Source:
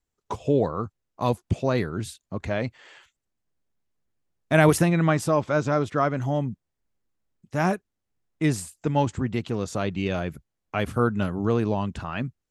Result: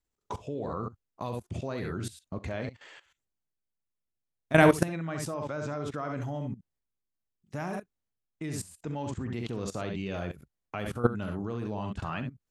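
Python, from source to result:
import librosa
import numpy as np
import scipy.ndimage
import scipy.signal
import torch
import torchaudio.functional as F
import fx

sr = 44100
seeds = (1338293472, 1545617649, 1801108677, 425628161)

y = fx.room_early_taps(x, sr, ms=(42, 67), db=(-13.0, -8.5))
y = fx.level_steps(y, sr, step_db=17)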